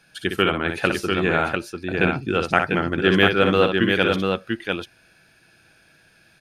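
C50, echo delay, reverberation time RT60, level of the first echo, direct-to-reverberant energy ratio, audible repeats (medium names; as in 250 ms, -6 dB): no reverb, 60 ms, no reverb, -6.5 dB, no reverb, 2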